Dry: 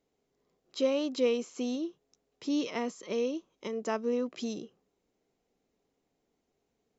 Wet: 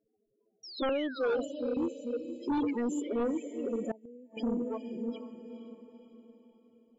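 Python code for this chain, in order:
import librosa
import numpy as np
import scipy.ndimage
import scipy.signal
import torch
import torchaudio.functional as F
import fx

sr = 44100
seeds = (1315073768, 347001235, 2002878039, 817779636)

p1 = fx.reverse_delay(x, sr, ms=434, wet_db=-7.5)
p2 = fx.env_flanger(p1, sr, rest_ms=9.3, full_db=-26.5)
p3 = fx.dynamic_eq(p2, sr, hz=550.0, q=3.6, threshold_db=-41.0, ratio=4.0, max_db=-4)
p4 = fx.spec_topn(p3, sr, count=8)
p5 = fx.highpass(p4, sr, hz=400.0, slope=12, at=(0.89, 1.77))
p6 = fx.high_shelf(p5, sr, hz=3800.0, db=12.0, at=(2.57, 3.14))
p7 = fx.echo_diffused(p6, sr, ms=463, feedback_pct=46, wet_db=-11)
p8 = fx.gate_flip(p7, sr, shuts_db=-29.0, range_db=-25, at=(3.91, 4.37))
p9 = fx.fold_sine(p8, sr, drive_db=12, ceiling_db=-18.0)
p10 = p8 + (p9 * librosa.db_to_amplitude(-5.0))
p11 = fx.spec_paint(p10, sr, seeds[0], shape='fall', start_s=0.63, length_s=0.9, low_hz=510.0, high_hz=5800.0, level_db=-40.0)
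y = p11 * librosa.db_to_amplitude(-6.5)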